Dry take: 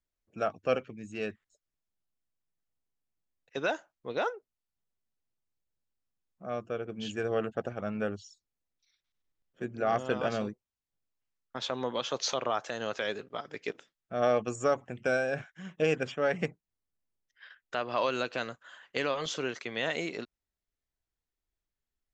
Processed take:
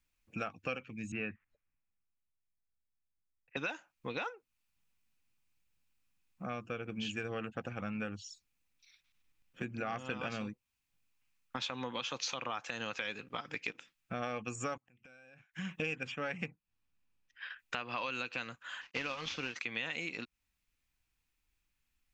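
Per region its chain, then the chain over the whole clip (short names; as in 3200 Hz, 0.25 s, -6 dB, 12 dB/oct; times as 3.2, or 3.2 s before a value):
1.12–3.57 LPF 2300 Hz 24 dB/oct + three-band expander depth 40%
14.77–15.54 compressor 4:1, threshold -33 dBFS + flipped gate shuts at -41 dBFS, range -28 dB
16.44–17.59 high shelf 5300 Hz -11 dB + notch 2100 Hz, Q 16
18.81–19.56 CVSD 32 kbps + upward expander, over -43 dBFS
whole clip: thirty-one-band EQ 400 Hz -11 dB, 630 Hz -11 dB, 2500 Hz +10 dB; compressor 4:1, threshold -45 dBFS; gain +7.5 dB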